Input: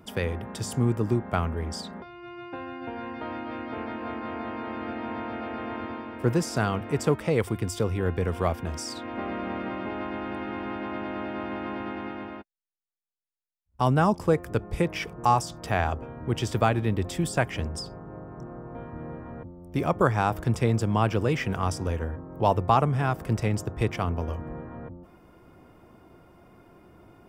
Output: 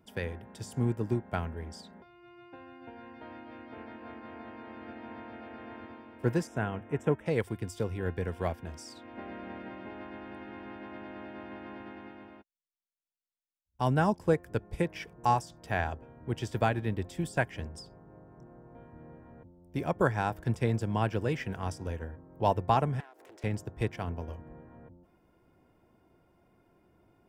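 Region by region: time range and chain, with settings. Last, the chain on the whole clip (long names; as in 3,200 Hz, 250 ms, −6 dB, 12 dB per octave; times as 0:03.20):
0:06.47–0:07.26: Butterworth band-reject 4,500 Hz, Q 1.9 + high-shelf EQ 4,600 Hz −10.5 dB
0:23.00–0:23.44: Butterworth high-pass 290 Hz 48 dB per octave + downward compressor, threshold −37 dBFS + highs frequency-modulated by the lows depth 0.4 ms
whole clip: notch filter 1,200 Hz, Q 6.6; dynamic equaliser 1,700 Hz, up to +5 dB, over −50 dBFS, Q 6; expander for the loud parts 1.5 to 1, over −36 dBFS; level −3 dB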